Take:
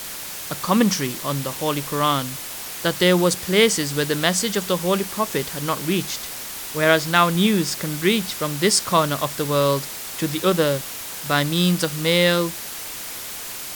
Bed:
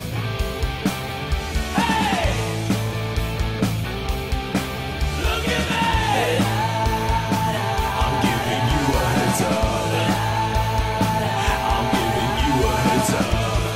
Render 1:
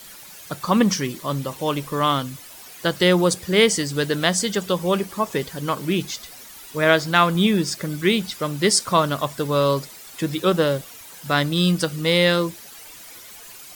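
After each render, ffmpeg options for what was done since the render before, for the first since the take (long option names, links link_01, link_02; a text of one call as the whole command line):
ffmpeg -i in.wav -af "afftdn=noise_reduction=12:noise_floor=-33" out.wav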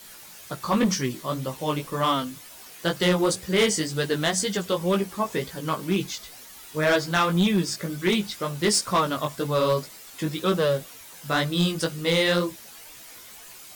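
ffmpeg -i in.wav -af "flanger=delay=15:depth=4.8:speed=2,volume=15.5dB,asoftclip=hard,volume=-15.5dB" out.wav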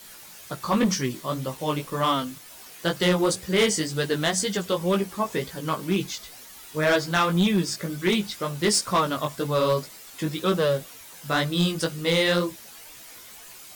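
ffmpeg -i in.wav -filter_complex "[0:a]asettb=1/sr,asplit=3[link_01][link_02][link_03];[link_01]atrim=end=1.144[link_04];[link_02]atrim=start=1.14:end=2.48,asetpts=PTS-STARTPTS,afade=type=in:duration=0.004:curve=qsin,afade=type=out:start_time=1.336:duration=0.004:curve=qsin,aeval=exprs='val(0)*gte(abs(val(0)),0.00596)':channel_layout=same[link_05];[link_03]atrim=start=2.476[link_06];[link_04][link_05]acrossfade=duration=0.004:curve1=hsin:curve2=qsin[link_07];[link_07][link_06]acrossfade=duration=0.004:curve1=qsin:curve2=hsin" out.wav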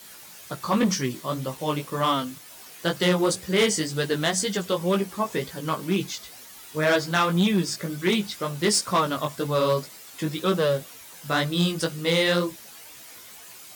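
ffmpeg -i in.wav -af "highpass=63" out.wav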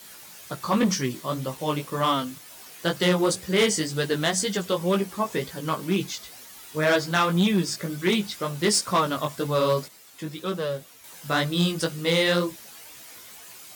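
ffmpeg -i in.wav -filter_complex "[0:a]asplit=3[link_01][link_02][link_03];[link_01]atrim=end=9.882[link_04];[link_02]atrim=start=9.878:end=11.042,asetpts=PTS-STARTPTS,volume=-6dB[link_05];[link_03]atrim=start=11.038[link_06];[link_04][link_05]acrossfade=duration=0.004:curve1=hsin:curve2=hsin[link_07];[link_07][link_06]acrossfade=duration=0.004:curve1=hsin:curve2=hsin" out.wav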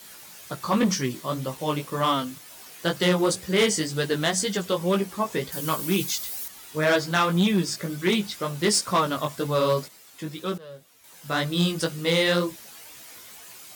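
ffmpeg -i in.wav -filter_complex "[0:a]asettb=1/sr,asplit=3[link_01][link_02][link_03];[link_01]atrim=end=5.524[link_04];[link_02]atrim=start=5.52:end=6.48,asetpts=PTS-STARTPTS,afade=type=in:duration=0.004:curve=qsin,afade=type=out:start_time=0.956:duration=0.004:curve=qsin,aemphasis=mode=production:type=50kf[link_05];[link_03]atrim=start=6.476[link_06];[link_04][link_05]acrossfade=duration=0.004:curve1=hsin:curve2=qsin[link_07];[link_07][link_06]acrossfade=duration=0.004:curve1=qsin:curve2=hsin,asplit=2[link_08][link_09];[link_08]atrim=end=10.58,asetpts=PTS-STARTPTS,afade=type=out:start_time=10.576:duration=0.004:curve=hsin:silence=0.112202[link_10];[link_09]atrim=start=10.58,asetpts=PTS-STARTPTS,afade=type=in:duration=1.01:silence=0.112202[link_11];[link_10][link_11]concat=n=2:v=0:a=1" out.wav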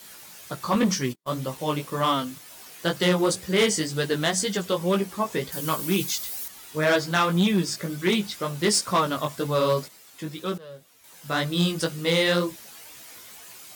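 ffmpeg -i in.wav -filter_complex "[0:a]asettb=1/sr,asplit=3[link_01][link_02][link_03];[link_01]atrim=end=0.754[link_04];[link_02]atrim=start=0.75:end=1.36,asetpts=PTS-STARTPTS,afade=type=in:duration=0.004:curve=qsin,afade=type=out:start_time=0.606:duration=0.004:curve=qsin,agate=range=-45dB:threshold=-32dB:ratio=16:release=100:detection=peak[link_05];[link_03]atrim=start=1.356[link_06];[link_04][link_05]acrossfade=duration=0.004:curve1=hsin:curve2=qsin[link_07];[link_07][link_06]acrossfade=duration=0.004:curve1=qsin:curve2=hsin,asettb=1/sr,asplit=3[link_08][link_09][link_10];[link_08]atrim=end=9.764[link_11];[link_09]atrim=start=9.76:end=10.5,asetpts=PTS-STARTPTS,afade=type=in:duration=0.004:curve=qsin,afade=type=out:start_time=0.736:duration=0.004:curve=qsin,acrusher=bits=9:mode=log:mix=0:aa=0.000001[link_12];[link_10]atrim=start=10.496[link_13];[link_11][link_12]acrossfade=duration=0.004:curve1=hsin:curve2=qsin[link_14];[link_14][link_13]acrossfade=duration=0.004:curve1=qsin:curve2=hsin" out.wav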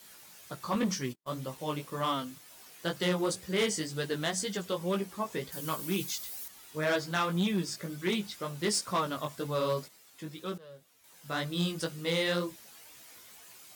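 ffmpeg -i in.wav -af "volume=-8dB" out.wav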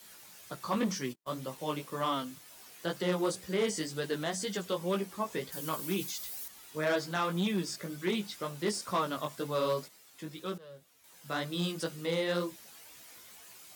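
ffmpeg -i in.wav -filter_complex "[0:a]acrossover=split=150|1200[link_01][link_02][link_03];[link_01]acompressor=threshold=-55dB:ratio=6[link_04];[link_03]alimiter=level_in=5dB:limit=-24dB:level=0:latency=1:release=11,volume=-5dB[link_05];[link_04][link_02][link_05]amix=inputs=3:normalize=0" out.wav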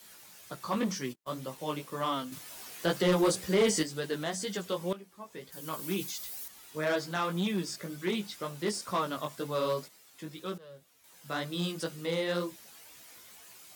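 ffmpeg -i in.wav -filter_complex "[0:a]asettb=1/sr,asplit=3[link_01][link_02][link_03];[link_01]atrim=end=2.324[link_04];[link_02]atrim=start=2.32:end=3.83,asetpts=PTS-STARTPTS,afade=type=in:duration=0.004:curve=qsin,afade=type=out:start_time=1.506:duration=0.004:curve=qsin,aeval=exprs='0.112*sin(PI/2*1.41*val(0)/0.112)':channel_layout=same[link_05];[link_03]atrim=start=3.826[link_06];[link_04][link_05]acrossfade=duration=0.004:curve1=hsin:curve2=qsin[link_07];[link_07][link_06]acrossfade=duration=0.004:curve1=qsin:curve2=hsin,asplit=2[link_08][link_09];[link_08]atrim=end=4.93,asetpts=PTS-STARTPTS,afade=type=out:start_time=4.926:duration=0.004:curve=hsin:silence=0.177828[link_10];[link_09]atrim=start=4.93,asetpts=PTS-STARTPTS,afade=type=in:duration=0.95:curve=qua:silence=0.177828[link_11];[link_10][link_11]concat=n=2:v=0:a=1" out.wav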